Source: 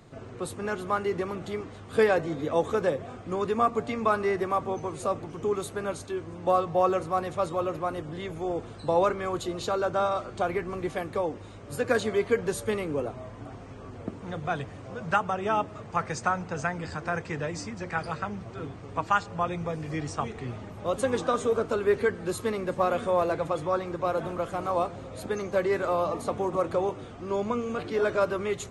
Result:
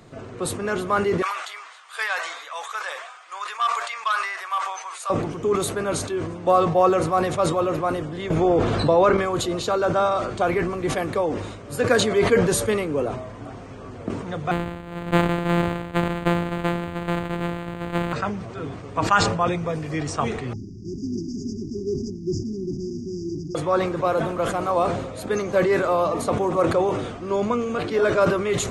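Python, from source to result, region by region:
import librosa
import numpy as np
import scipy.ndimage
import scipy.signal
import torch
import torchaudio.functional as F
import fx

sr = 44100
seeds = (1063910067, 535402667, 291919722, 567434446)

y = fx.chain(x, sr, fx.highpass(hz=1000.0, slope=24),
    fx.transformer_sat(knee_hz=1600.0), at=(1.22, 5.1))
y = fx.chain(y, sr, fx.air_absorb(metres=80.0),
    fx.env_flatten(amount_pct=70), at=(8.3, 9.17))
y = fx.chain(y, sr, fx.sample_sort(block=256),
    fx.resample_linear(factor=8), at=(14.51, 18.13))
y = fx.chain(y, sr, fx.cvsd(bps=32000),
    fx.brickwall_bandstop(low_hz=400.0, high_hz=4700.0),
    fx.high_shelf(hz=4600.0, db=-7.5), at=(20.53, 23.55))
y = fx.peak_eq(y, sr, hz=68.0, db=-3.5, octaves=1.8)
y = fx.notch(y, sr, hz=830.0, q=24.0)
y = fx.sustainer(y, sr, db_per_s=54.0)
y = y * librosa.db_to_amplitude(5.5)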